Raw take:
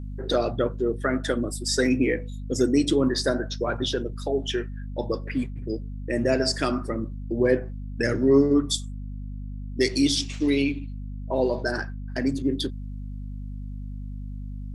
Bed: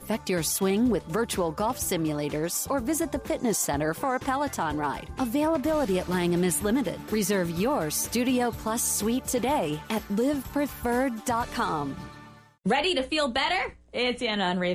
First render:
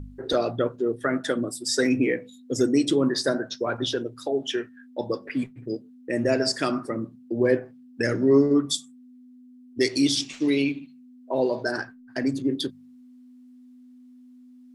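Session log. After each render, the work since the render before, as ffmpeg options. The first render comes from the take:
-af "bandreject=f=50:t=h:w=4,bandreject=f=100:t=h:w=4,bandreject=f=150:t=h:w=4,bandreject=f=200:t=h:w=4"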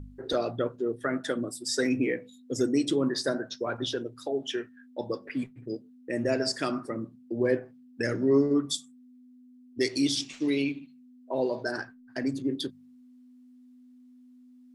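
-af "volume=0.596"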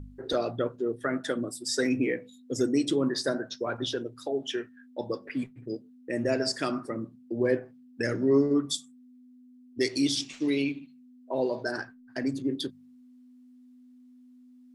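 -af anull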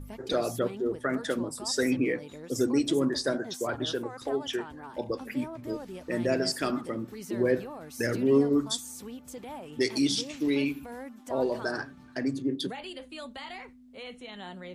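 -filter_complex "[1:a]volume=0.158[s0];[0:a][s0]amix=inputs=2:normalize=0"

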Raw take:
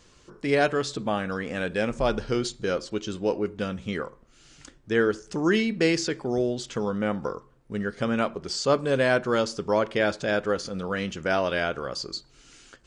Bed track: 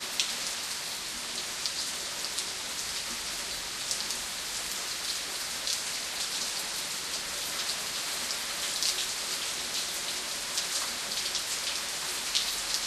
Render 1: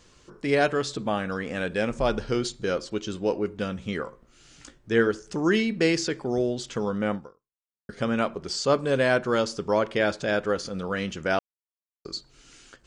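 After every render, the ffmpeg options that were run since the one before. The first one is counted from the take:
-filter_complex "[0:a]asettb=1/sr,asplit=3[s0][s1][s2];[s0]atrim=end=4.044[s3];[s1]atrim=start=4.04:end=5.07,asetpts=PTS-STARTPTS,afade=t=in:d=0.004:c=qsin,afade=t=out:st=1.026:d=0.004:c=qsin,asplit=2[s4][s5];[s5]adelay=17,volume=0.398[s6];[s4][s6]amix=inputs=2:normalize=0,atrim=end_sample=45423[s7];[s2]atrim=start=5.066[s8];[s3][s7]acrossfade=d=0.004:c1=hsin:c2=qsin[s9];[s9][s8]acrossfade=d=0.004:c1=qsin:c2=hsin,asplit=4[s10][s11][s12][s13];[s10]atrim=end=7.89,asetpts=PTS-STARTPTS,afade=t=out:st=7.15:d=0.74:c=exp[s14];[s11]atrim=start=7.89:end=11.39,asetpts=PTS-STARTPTS,afade=t=in:d=0.004:c=hsin,afade=t=out:st=3.496:d=0.004:c=hsin[s15];[s12]atrim=start=11.39:end=12.05,asetpts=PTS-STARTPTS,volume=0[s16];[s13]atrim=start=12.05,asetpts=PTS-STARTPTS,afade=t=in:d=0.004:c=hsin[s17];[s14][s15][s16][s17]concat=n=4:v=0:a=1"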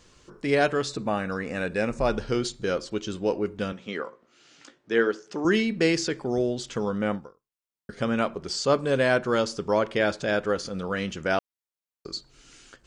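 -filter_complex "[0:a]asettb=1/sr,asplit=3[s0][s1][s2];[s0]atrim=end=0.894[s3];[s1]atrim=start=0.89:end=2.12,asetpts=PTS-STARTPTS,afade=t=in:d=0.004:c=qsin,afade=t=out:st=1.226:d=0.004:c=qsin,asuperstop=centerf=3200:order=4:qfactor=5.6[s4];[s2]atrim=start=2.116[s5];[s3][s4]acrossfade=d=0.004:c1=hsin:c2=qsin[s6];[s6][s5]acrossfade=d=0.004:c1=qsin:c2=hsin,asettb=1/sr,asplit=3[s7][s8][s9];[s7]atrim=end=3.724[s10];[s8]atrim=start=3.72:end=5.45,asetpts=PTS-STARTPTS,afade=t=in:d=0.004:c=qsin,afade=t=out:st=1.726:d=0.004:c=qsin,highpass=270,lowpass=5500[s11];[s9]atrim=start=5.446[s12];[s10][s11]acrossfade=d=0.004:c1=hsin:c2=qsin[s13];[s13][s12]acrossfade=d=0.004:c1=qsin:c2=hsin"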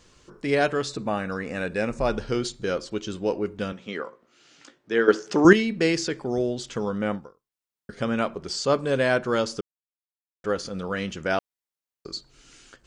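-filter_complex "[0:a]asplit=5[s0][s1][s2][s3][s4];[s0]atrim=end=5.082[s5];[s1]atrim=start=5.078:end=5.532,asetpts=PTS-STARTPTS,volume=2.99[s6];[s2]atrim=start=5.528:end=9.61,asetpts=PTS-STARTPTS,afade=t=out:st=4.078:d=0.004:c=hsin[s7];[s3]atrim=start=9.61:end=10.44,asetpts=PTS-STARTPTS,volume=0[s8];[s4]atrim=start=10.44,asetpts=PTS-STARTPTS,afade=t=in:d=0.004:c=hsin[s9];[s5][s6]acrossfade=d=0.004:c1=hsin:c2=hsin[s10];[s7][s8][s9]concat=n=3:v=0:a=1[s11];[s10][s11]acrossfade=d=0.004:c1=hsin:c2=hsin"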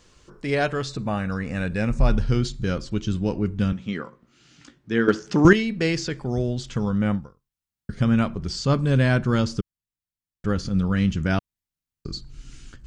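-filter_complex "[0:a]acrossover=split=7600[s0][s1];[s1]acompressor=threshold=0.002:ratio=4:attack=1:release=60[s2];[s0][s2]amix=inputs=2:normalize=0,asubboost=boost=11:cutoff=160"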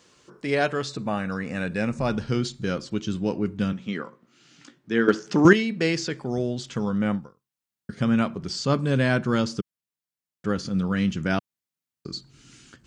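-af "highpass=160"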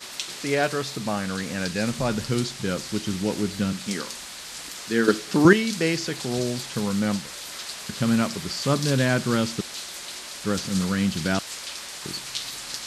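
-filter_complex "[1:a]volume=0.708[s0];[0:a][s0]amix=inputs=2:normalize=0"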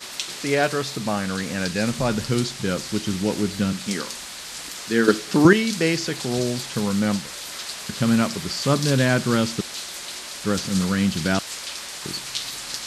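-af "volume=1.33,alimiter=limit=0.794:level=0:latency=1"

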